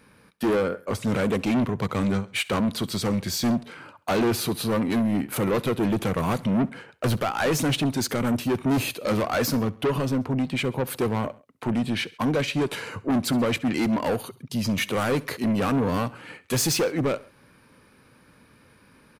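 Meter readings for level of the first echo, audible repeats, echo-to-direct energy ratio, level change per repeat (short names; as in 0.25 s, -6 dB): -21.5 dB, 2, -20.0 dB, -4.5 dB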